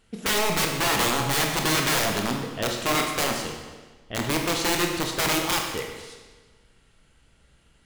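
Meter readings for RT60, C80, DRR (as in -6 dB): 1.3 s, 5.5 dB, 1.0 dB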